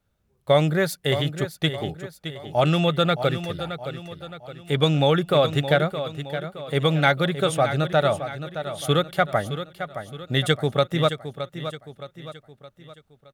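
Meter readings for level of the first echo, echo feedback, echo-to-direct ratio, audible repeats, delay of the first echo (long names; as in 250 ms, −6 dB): −10.5 dB, 45%, −9.5 dB, 4, 618 ms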